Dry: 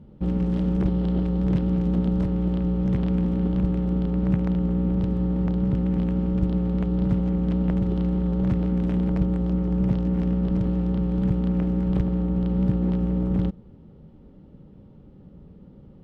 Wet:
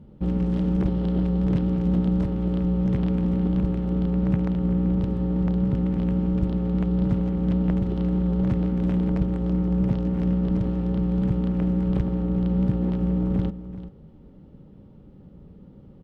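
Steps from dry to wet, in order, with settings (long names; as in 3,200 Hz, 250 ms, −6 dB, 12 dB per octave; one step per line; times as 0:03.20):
single-tap delay 386 ms −14 dB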